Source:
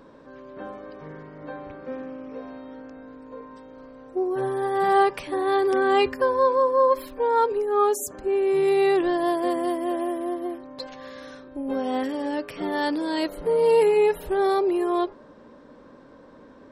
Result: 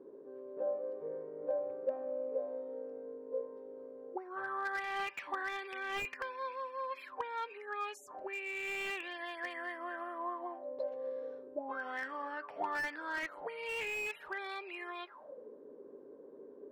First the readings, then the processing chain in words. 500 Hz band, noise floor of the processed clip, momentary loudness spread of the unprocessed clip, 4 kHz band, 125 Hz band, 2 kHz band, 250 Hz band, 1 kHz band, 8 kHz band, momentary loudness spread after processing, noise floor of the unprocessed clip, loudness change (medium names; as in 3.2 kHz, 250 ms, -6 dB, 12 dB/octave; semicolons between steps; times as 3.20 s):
-18.0 dB, -55 dBFS, 20 LU, -11.0 dB, under -20 dB, -4.5 dB, -23.0 dB, -15.5 dB, -16.5 dB, 13 LU, -49 dBFS, -17.0 dB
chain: auto-wah 370–2500 Hz, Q 9.4, up, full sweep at -19.5 dBFS; slew-rate limiter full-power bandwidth 13 Hz; trim +8 dB